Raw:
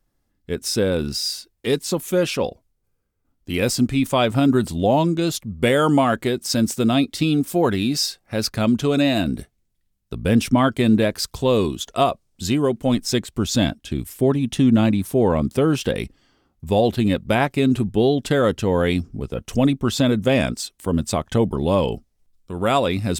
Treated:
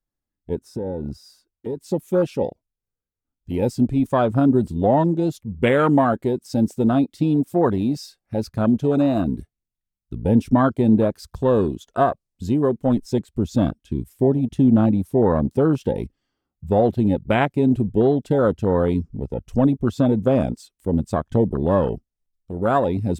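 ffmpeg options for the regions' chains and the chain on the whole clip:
ffmpeg -i in.wav -filter_complex "[0:a]asettb=1/sr,asplit=3[link_01][link_02][link_03];[link_01]atrim=end=0.594[link_04];[link_02]atrim=start=0.59:end=1.81,asetpts=PTS-STARTPTS,afade=type=in:duration=0.004:curve=qsin,afade=type=out:start_time=1.216:duration=0.004:curve=qsin,highshelf=frequency=1800:width_type=q:width=1.5:gain=-7.5,acompressor=threshold=-23dB:ratio=6:attack=3.2:release=140:knee=1:detection=peak[link_05];[link_03]atrim=start=1.806[link_06];[link_04][link_05]acrossfade=duration=0.004:curve1=hsin:curve2=qsin[link_07];[link_07][link_06]acrossfade=duration=0.004:curve1=qsin:curve2=hsin,aemphasis=mode=reproduction:type=cd,afwtdn=0.0708,highshelf=frequency=6000:gain=11" out.wav

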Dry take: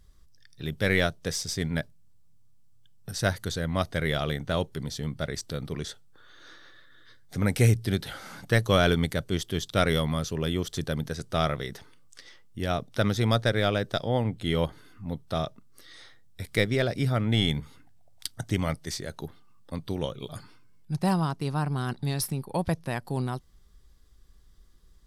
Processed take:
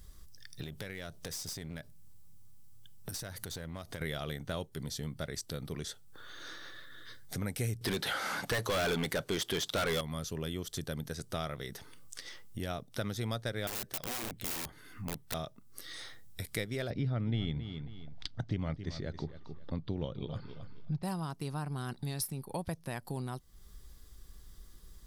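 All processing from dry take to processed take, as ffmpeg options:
ffmpeg -i in.wav -filter_complex "[0:a]asettb=1/sr,asplit=3[link_01][link_02][link_03];[link_01]atrim=end=0.634[link_04];[link_02]atrim=start=0.63:end=4.01,asetpts=PTS-STARTPTS,afade=type=in:duration=0.004:curve=qsin,afade=type=out:start_time=3.376:duration=0.004:curve=qsin,acompressor=threshold=-34dB:ratio=12:attack=3.2:release=140:knee=1:detection=peak,aeval=exprs='clip(val(0),-1,0.00891)':channel_layout=same[link_05];[link_03]atrim=start=4.006[link_06];[link_04][link_05]acrossfade=duration=0.004:curve1=hsin:curve2=qsin[link_07];[link_07][link_06]acrossfade=duration=0.004:curve1=qsin:curve2=hsin,asettb=1/sr,asplit=3[link_08][link_09][link_10];[link_08]atrim=end=7.814[link_11];[link_09]atrim=start=7.81:end=10.01,asetpts=PTS-STARTPTS,afade=type=in:duration=0.004:curve=qsin,afade=type=out:start_time=2.196:duration=0.004:curve=qsin,asplit=2[link_12][link_13];[link_13]highpass=frequency=720:poles=1,volume=28dB,asoftclip=type=tanh:threshold=-6.5dB[link_14];[link_12][link_14]amix=inputs=2:normalize=0,lowpass=frequency=2400:poles=1,volume=-6dB,aeval=exprs='0.251*(abs(mod(val(0)/0.251+3,4)-2)-1)':channel_layout=same[link_15];[link_10]atrim=start=10.006[link_16];[link_11][link_15]acrossfade=duration=0.004:curve1=hsin:curve2=qsin[link_17];[link_17][link_16]acrossfade=duration=0.004:curve1=qsin:curve2=hsin,asettb=1/sr,asplit=3[link_18][link_19][link_20];[link_18]atrim=end=13.674[link_21];[link_19]atrim=start=13.67:end=15.34,asetpts=PTS-STARTPTS,afade=type=in:duration=0.004:curve=qsin,afade=type=out:start_time=1.666:duration=0.004:curve=qsin,equalizer=frequency=1900:width_type=o:width=0.79:gain=7,aeval=exprs='(mod(18.8*val(0)+1,2)-1)/18.8':channel_layout=same[link_22];[link_20]atrim=start=15.336[link_23];[link_21][link_22]acrossfade=duration=0.004:curve1=hsin:curve2=qsin[link_24];[link_24][link_23]acrossfade=duration=0.004:curve1=qsin:curve2=hsin,asettb=1/sr,asplit=3[link_25][link_26][link_27];[link_25]atrim=end=16.904[link_28];[link_26]atrim=start=16.9:end=21.03,asetpts=PTS-STARTPTS,afade=type=in:duration=0.004:curve=qsin,afade=type=out:start_time=4.126:duration=0.004:curve=qsin,lowpass=frequency=4400:width=0.5412,lowpass=frequency=4400:width=1.3066,lowshelf=frequency=450:gain=9,aecho=1:1:270|540:0.178|0.0267,atrim=end_sample=182133[link_29];[link_27]atrim=start=21.026[link_30];[link_28][link_29]acrossfade=duration=0.004:curve1=hsin:curve2=qsin[link_31];[link_31][link_30]acrossfade=duration=0.004:curve1=qsin:curve2=hsin,highshelf=frequency=8800:gain=11,acompressor=threshold=-46dB:ratio=2.5,volume=4.5dB" out.wav

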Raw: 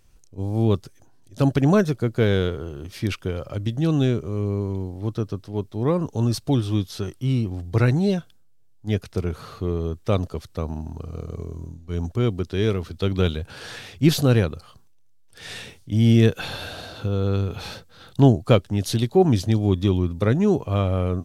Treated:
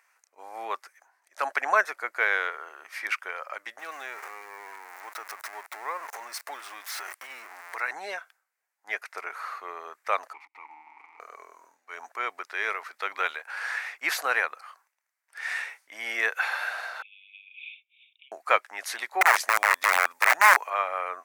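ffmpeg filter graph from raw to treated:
ffmpeg -i in.wav -filter_complex "[0:a]asettb=1/sr,asplit=3[link_01][link_02][link_03];[link_01]atrim=end=3.794[link_04];[link_02]atrim=start=3.79:end=7.9,asetpts=PTS-STARTPTS,afade=type=in:duration=0.004:curve=qsin,afade=type=out:start_time=4.106:duration=0.004:curve=qsin,aeval=exprs='val(0)+0.5*0.0266*sgn(val(0))':channel_layout=same,highshelf=frequency=4900:gain=4.5,acompressor=threshold=-29dB:ratio=2:attack=3.2:release=140:knee=1:detection=peak[link_05];[link_03]atrim=start=7.896[link_06];[link_04][link_05]acrossfade=duration=0.004:curve1=hsin:curve2=qsin[link_07];[link_07][link_06]acrossfade=duration=0.004:curve1=qsin:curve2=hsin,asettb=1/sr,asplit=3[link_08][link_09][link_10];[link_08]atrim=end=10.334[link_11];[link_09]atrim=start=10.33:end=11.2,asetpts=PTS-STARTPTS,afade=type=in:duration=0.004:curve=qsin,afade=type=out:start_time=0.866:duration=0.004:curve=qsin,aeval=exprs='val(0)+0.5*0.0376*sgn(val(0))':channel_layout=same,asplit=3[link_12][link_13][link_14];[link_12]bandpass=frequency=300:width_type=q:width=8,volume=0dB[link_15];[link_13]bandpass=frequency=870:width_type=q:width=8,volume=-6dB[link_16];[link_14]bandpass=frequency=2240:width_type=q:width=8,volume=-9dB[link_17];[link_15][link_16][link_17]amix=inputs=3:normalize=0,equalizer=frequency=3100:width_type=o:width=1.7:gain=2.5[link_18];[link_10]atrim=start=11.196[link_19];[link_11][link_18]acrossfade=duration=0.004:curve1=hsin:curve2=qsin[link_20];[link_20][link_19]acrossfade=duration=0.004:curve1=qsin:curve2=hsin,asettb=1/sr,asplit=3[link_21][link_22][link_23];[link_21]atrim=end=17.024[link_24];[link_22]atrim=start=17.02:end=18.32,asetpts=PTS-STARTPTS,afade=type=in:duration=0.004:curve=qsin,afade=type=out:start_time=1.296:duration=0.004:curve=qsin,acompressor=threshold=-18dB:ratio=6:attack=3.2:release=140:knee=1:detection=peak,volume=15.5dB,asoftclip=hard,volume=-15.5dB,asuperpass=centerf=2900:order=20:qfactor=2[link_25];[link_23]atrim=start=18.316[link_26];[link_24][link_25]acrossfade=duration=0.004:curve1=hsin:curve2=qsin[link_27];[link_27][link_26]acrossfade=duration=0.004:curve1=qsin:curve2=hsin,asettb=1/sr,asplit=3[link_28][link_29][link_30];[link_28]atrim=end=19.214[link_31];[link_29]atrim=start=19.21:end=20.7,asetpts=PTS-STARTPTS,afade=type=in:duration=0.004:curve=qsin,afade=type=out:start_time=1.486:duration=0.004:curve=qsin,highshelf=frequency=4300:gain=10,aeval=exprs='(mod(5.01*val(0)+1,2)-1)/5.01':channel_layout=same[link_32];[link_30]atrim=start=20.696[link_33];[link_31][link_32]acrossfade=duration=0.004:curve1=hsin:curve2=qsin[link_34];[link_34][link_33]acrossfade=duration=0.004:curve1=qsin:curve2=hsin,highpass=frequency=830:width=0.5412,highpass=frequency=830:width=1.3066,highshelf=frequency=2600:width_type=q:width=3:gain=-8,volume=5dB" out.wav

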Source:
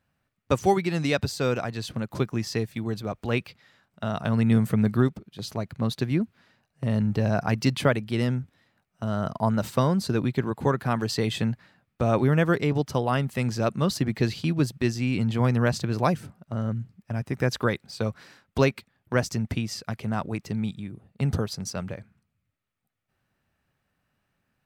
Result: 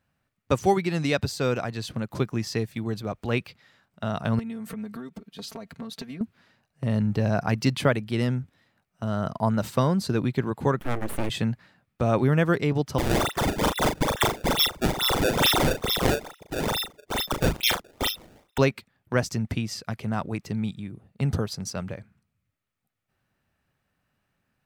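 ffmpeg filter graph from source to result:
ffmpeg -i in.wav -filter_complex "[0:a]asettb=1/sr,asplit=3[link_01][link_02][link_03];[link_01]atrim=end=4.394[link_04];[link_02]atrim=start=4.39:end=6.21,asetpts=PTS-STARTPTS,afade=type=in:duration=0.004:curve=qsin,afade=type=out:start_time=1.816:duration=0.004:curve=qsin,lowshelf=frequency=120:gain=-9,acompressor=threshold=-34dB:ratio=12:attack=3.2:release=140:knee=1:detection=peak,aecho=1:1:4.4:0.81,atrim=end_sample=80262[link_05];[link_03]atrim=start=6.206[link_06];[link_04][link_05]acrossfade=duration=0.004:curve1=hsin:curve2=qsin[link_07];[link_07][link_06]acrossfade=duration=0.004:curve1=qsin:curve2=hsin,asettb=1/sr,asplit=3[link_08][link_09][link_10];[link_08]atrim=end=10.794[link_11];[link_09]atrim=start=10.79:end=11.3,asetpts=PTS-STARTPTS,afade=type=in:duration=0.004:curve=qsin,afade=type=out:start_time=0.506:duration=0.004:curve=qsin,aeval=exprs='abs(val(0))':channel_layout=same,equalizer=frequency=4600:width=0.88:gain=-9[link_12];[link_10]atrim=start=11.296[link_13];[link_11][link_12]acrossfade=duration=0.004:curve1=hsin:curve2=qsin[link_14];[link_14][link_13]acrossfade=duration=0.004:curve1=qsin:curve2=hsin,asettb=1/sr,asplit=3[link_15][link_16][link_17];[link_15]atrim=end=12.984[link_18];[link_16]atrim=start=12.98:end=18.58,asetpts=PTS-STARTPTS,afade=type=in:duration=0.004:curve=qsin,afade=type=out:start_time=5.596:duration=0.004:curve=qsin,lowpass=frequency=3100:width_type=q:width=0.5098,lowpass=frequency=3100:width_type=q:width=0.6013,lowpass=frequency=3100:width_type=q:width=0.9,lowpass=frequency=3100:width_type=q:width=2.563,afreqshift=-3700,acrusher=samples=24:mix=1:aa=0.000001:lfo=1:lforange=38.4:lforate=2.3,asplit=2[link_19][link_20];[link_20]adelay=38,volume=-6.5dB[link_21];[link_19][link_21]amix=inputs=2:normalize=0,atrim=end_sample=246960[link_22];[link_17]atrim=start=18.576[link_23];[link_18][link_22]acrossfade=duration=0.004:curve1=hsin:curve2=qsin[link_24];[link_24][link_23]acrossfade=duration=0.004:curve1=qsin:curve2=hsin" out.wav

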